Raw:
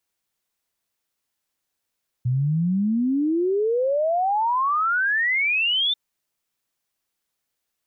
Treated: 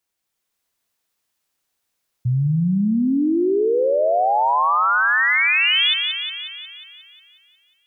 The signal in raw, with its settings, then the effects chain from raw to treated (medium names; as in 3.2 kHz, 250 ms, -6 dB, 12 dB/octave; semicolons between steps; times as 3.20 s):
log sweep 120 Hz -> 3.6 kHz 3.69 s -18.5 dBFS
level rider gain up to 3 dB; on a send: thinning echo 180 ms, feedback 62%, high-pass 380 Hz, level -5.5 dB